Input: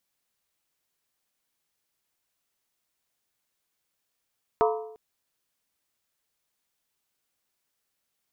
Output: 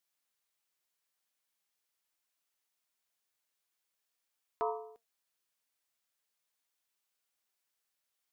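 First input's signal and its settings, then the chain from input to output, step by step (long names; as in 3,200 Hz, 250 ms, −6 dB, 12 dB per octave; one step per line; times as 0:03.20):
struck skin length 0.35 s, lowest mode 437 Hz, modes 6, decay 0.77 s, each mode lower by 2.5 dB, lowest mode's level −19 dB
low-shelf EQ 370 Hz −10.5 dB
brickwall limiter −19 dBFS
flanger 0.44 Hz, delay 2.7 ms, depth 4.1 ms, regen +85%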